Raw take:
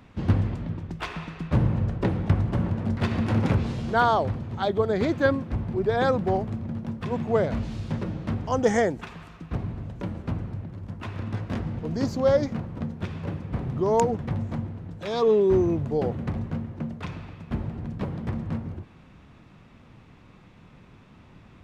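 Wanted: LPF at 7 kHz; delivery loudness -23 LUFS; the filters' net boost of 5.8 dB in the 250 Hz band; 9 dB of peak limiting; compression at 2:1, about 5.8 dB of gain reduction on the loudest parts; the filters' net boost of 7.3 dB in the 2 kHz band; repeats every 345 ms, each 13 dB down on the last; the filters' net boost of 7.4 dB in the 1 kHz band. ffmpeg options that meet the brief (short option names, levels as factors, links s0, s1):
-af "lowpass=7000,equalizer=f=250:t=o:g=7,equalizer=f=1000:t=o:g=7.5,equalizer=f=2000:t=o:g=6.5,acompressor=threshold=0.0891:ratio=2,alimiter=limit=0.133:level=0:latency=1,aecho=1:1:345|690|1035:0.224|0.0493|0.0108,volume=1.78"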